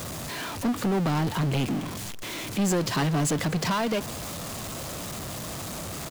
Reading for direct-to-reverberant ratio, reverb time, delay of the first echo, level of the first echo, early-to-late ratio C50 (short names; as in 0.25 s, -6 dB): none, none, 0.241 s, -22.0 dB, none